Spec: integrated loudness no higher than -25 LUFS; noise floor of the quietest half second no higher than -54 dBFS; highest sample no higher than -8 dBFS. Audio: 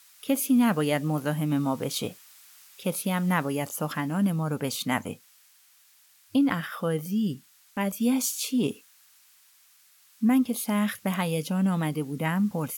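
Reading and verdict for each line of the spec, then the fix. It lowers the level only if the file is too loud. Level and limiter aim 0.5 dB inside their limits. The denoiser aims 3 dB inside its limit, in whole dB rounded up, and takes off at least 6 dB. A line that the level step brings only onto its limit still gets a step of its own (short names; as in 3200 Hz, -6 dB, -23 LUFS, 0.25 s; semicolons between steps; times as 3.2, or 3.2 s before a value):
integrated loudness -27.0 LUFS: OK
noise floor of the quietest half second -60 dBFS: OK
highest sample -11.5 dBFS: OK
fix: none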